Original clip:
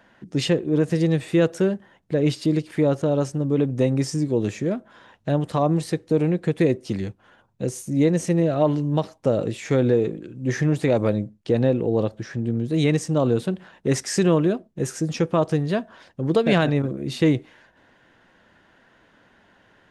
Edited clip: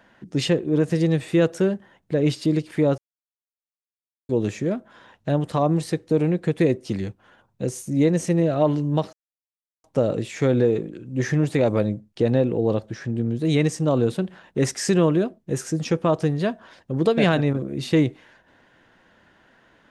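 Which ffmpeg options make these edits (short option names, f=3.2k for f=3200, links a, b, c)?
-filter_complex "[0:a]asplit=4[a][b][c][d];[a]atrim=end=2.98,asetpts=PTS-STARTPTS,afade=t=out:st=2.976:d=0.004:c=hsin[e];[b]atrim=start=2.98:end=4.29,asetpts=PTS-STARTPTS,volume=0[f];[c]atrim=start=4.29:end=9.13,asetpts=PTS-STARTPTS,afade=t=in:d=0.004:c=hsin,afade=t=out:st=4.836:d=0.004:c=hsin,apad=pad_dur=0.71[g];[d]atrim=start=9.13,asetpts=PTS-STARTPTS,afade=t=in:d=0.004:c=hsin[h];[e][f][g][h]concat=n=4:v=0:a=1"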